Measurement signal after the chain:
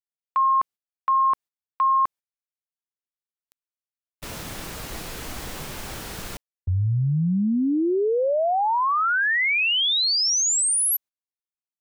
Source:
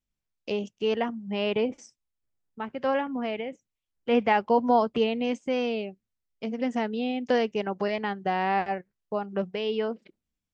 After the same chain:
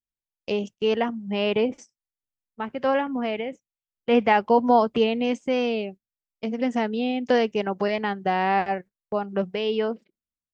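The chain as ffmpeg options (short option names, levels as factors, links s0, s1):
-af "agate=range=0.141:threshold=0.00708:ratio=16:detection=peak,volume=1.5"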